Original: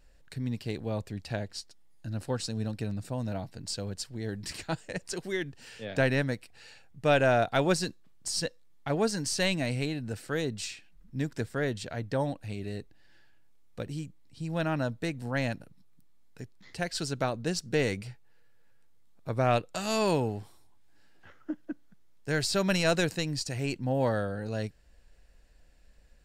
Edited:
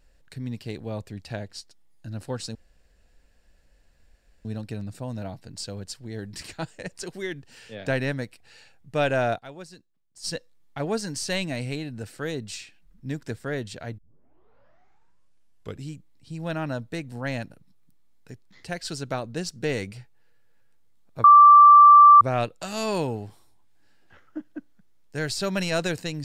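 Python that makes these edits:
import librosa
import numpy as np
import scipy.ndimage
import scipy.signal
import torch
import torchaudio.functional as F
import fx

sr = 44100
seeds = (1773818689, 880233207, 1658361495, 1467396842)

y = fx.edit(x, sr, fx.insert_room_tone(at_s=2.55, length_s=1.9),
    fx.fade_down_up(start_s=7.47, length_s=0.88, db=-16.0, fade_s=0.18, curve='exp'),
    fx.tape_start(start_s=12.08, length_s=1.95),
    fx.insert_tone(at_s=19.34, length_s=0.97, hz=1170.0, db=-7.5), tone=tone)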